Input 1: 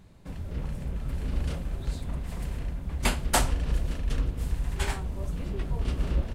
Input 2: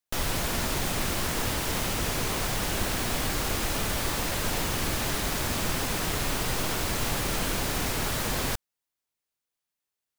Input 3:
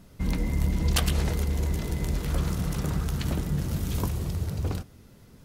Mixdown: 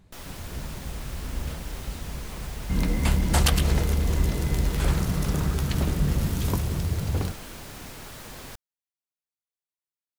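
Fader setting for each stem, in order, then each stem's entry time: -3.0 dB, -12.5 dB, +2.5 dB; 0.00 s, 0.00 s, 2.50 s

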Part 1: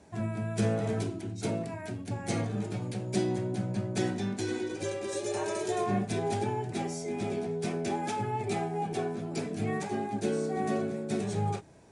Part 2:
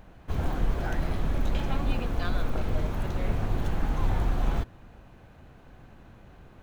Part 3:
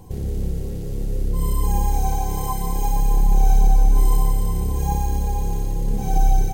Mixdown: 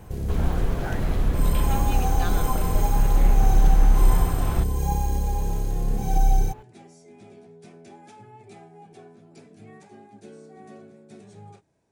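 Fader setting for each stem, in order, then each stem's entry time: -15.0 dB, +2.0 dB, -2.5 dB; 0.00 s, 0.00 s, 0.00 s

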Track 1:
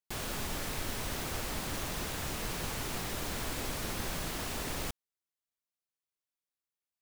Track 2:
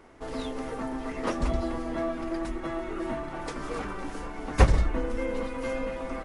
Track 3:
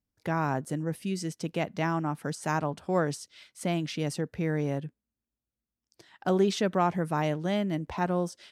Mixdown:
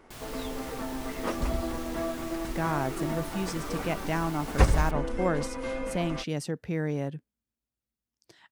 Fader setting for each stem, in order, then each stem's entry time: -6.5 dB, -2.0 dB, -1.0 dB; 0.00 s, 0.00 s, 2.30 s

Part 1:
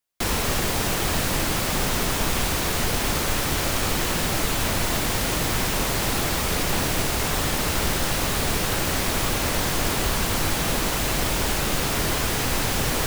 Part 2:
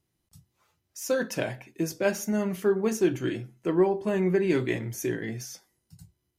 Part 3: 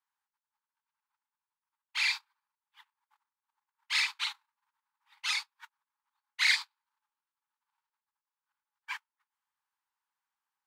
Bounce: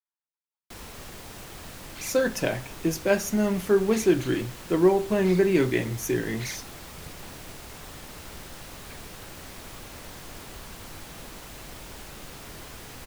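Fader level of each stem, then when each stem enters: -18.5 dB, +3.0 dB, -13.5 dB; 0.50 s, 1.05 s, 0.00 s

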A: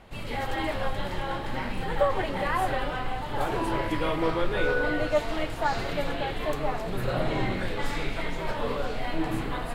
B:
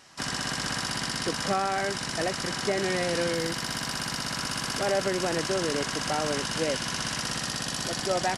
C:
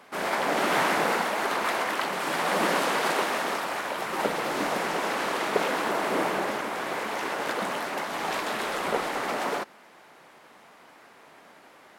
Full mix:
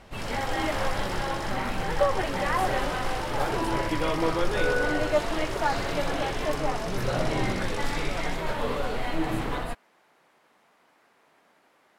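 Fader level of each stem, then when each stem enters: +0.5 dB, -12.0 dB, -10.5 dB; 0.00 s, 0.00 s, 0.00 s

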